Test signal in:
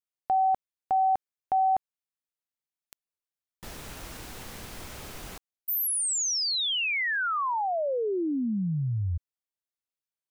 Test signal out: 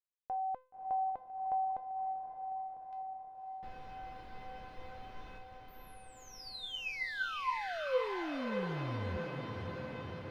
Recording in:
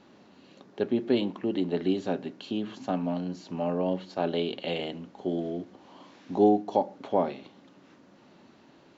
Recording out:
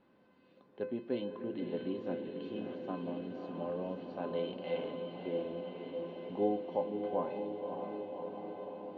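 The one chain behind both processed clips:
high-frequency loss of the air 330 metres
tuned comb filter 510 Hz, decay 0.34 s, mix 90%
feedback delay with all-pass diffusion 576 ms, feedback 75%, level −5.5 dB
level +7 dB

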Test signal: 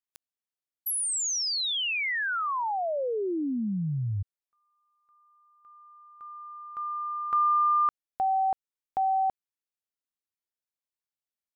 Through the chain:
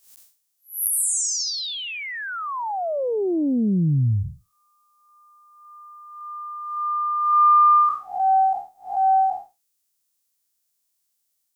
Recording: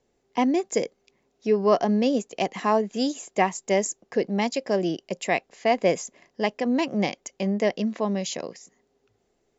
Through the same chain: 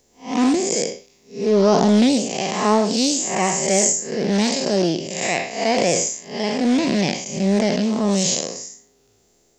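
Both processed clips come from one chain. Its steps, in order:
spectrum smeared in time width 190 ms
bass and treble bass +2 dB, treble +15 dB
highs frequency-modulated by the lows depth 0.31 ms
level +9 dB

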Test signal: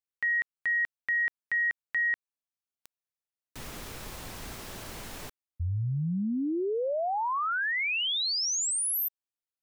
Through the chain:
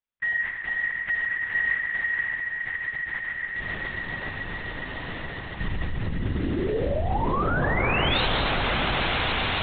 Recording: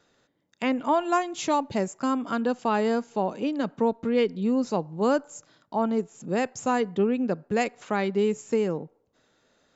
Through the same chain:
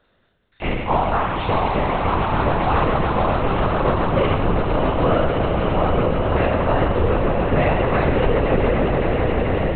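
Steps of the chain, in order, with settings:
peak hold with a decay on every bin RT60 1.17 s
echo that builds up and dies away 139 ms, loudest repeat 8, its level −9 dB
linear-prediction vocoder at 8 kHz whisper
level +1.5 dB

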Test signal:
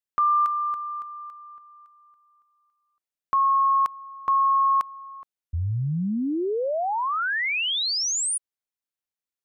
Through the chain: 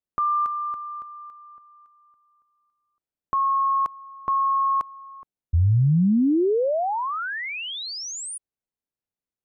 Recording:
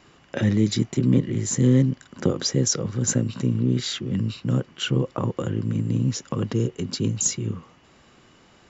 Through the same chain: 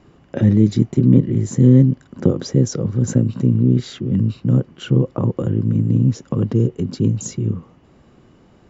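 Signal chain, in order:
tilt shelving filter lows +8 dB, about 890 Hz

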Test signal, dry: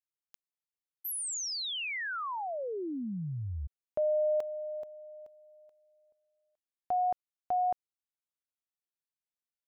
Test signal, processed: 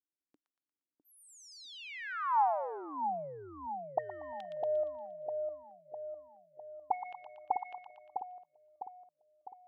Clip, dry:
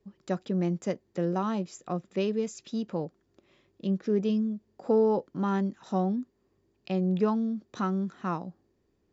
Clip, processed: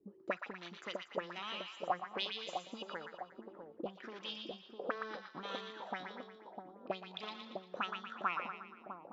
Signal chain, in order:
sine wavefolder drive 6 dB, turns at −14 dBFS
envelope filter 290–3,600 Hz, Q 5, up, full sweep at −16.5 dBFS
echo with a time of its own for lows and highs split 950 Hz, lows 654 ms, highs 117 ms, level −5 dB
level +1 dB

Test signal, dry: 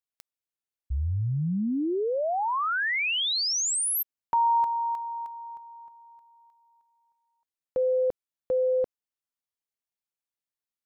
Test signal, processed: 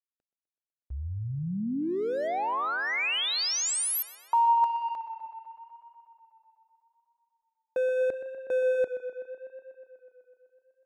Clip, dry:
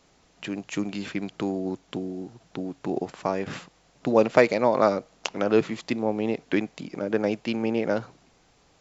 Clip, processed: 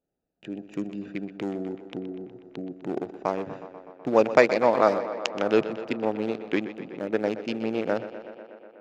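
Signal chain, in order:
adaptive Wiener filter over 41 samples
noise gate with hold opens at −47 dBFS, hold 179 ms, range −17 dB
low-shelf EQ 230 Hz −10 dB
on a send: tape delay 124 ms, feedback 81%, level −12.5 dB, low-pass 5,300 Hz
on the sum: level +2 dB

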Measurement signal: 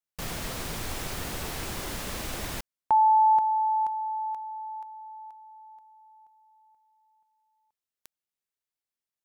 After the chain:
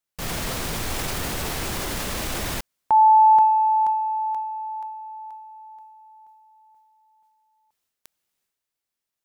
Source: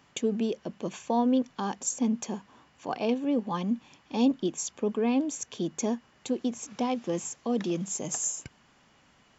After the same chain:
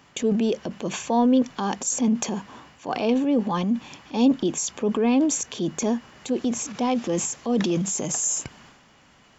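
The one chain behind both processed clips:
transient designer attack −3 dB, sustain +7 dB
level +6 dB

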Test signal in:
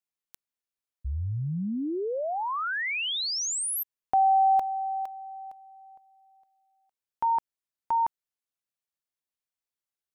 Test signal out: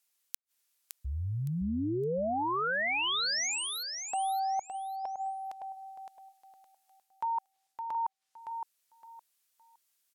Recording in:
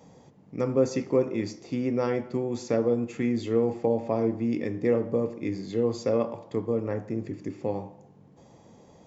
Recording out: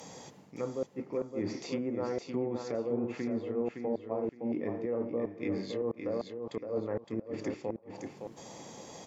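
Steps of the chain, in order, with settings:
treble cut that deepens with the level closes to 990 Hz, closed at −24.5 dBFS
spectral tilt +3 dB per octave
reversed playback
downward compressor 12 to 1, threshold −38 dBFS
reversed playback
gate with flip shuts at −31 dBFS, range −38 dB
repeating echo 564 ms, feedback 23%, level −6.5 dB
level +8 dB

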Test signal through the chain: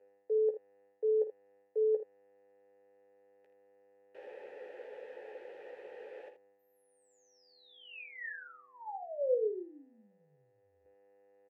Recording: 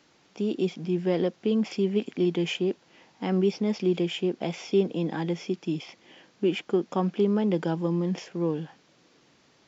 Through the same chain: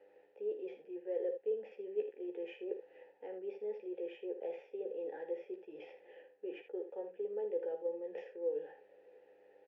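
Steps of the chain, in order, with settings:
hum with harmonics 100 Hz, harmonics 29, −53 dBFS −8 dB per octave
reversed playback
downward compressor 5 to 1, threshold −35 dBFS
reversed playback
formant filter e
three-way crossover with the lows and the highs turned down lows −14 dB, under 410 Hz, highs −12 dB, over 2,400 Hz
hollow resonant body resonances 420/830 Hz, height 17 dB, ringing for 25 ms
on a send: ambience of single reflections 14 ms −6 dB, 53 ms −11.5 dB, 79 ms −10.5 dB

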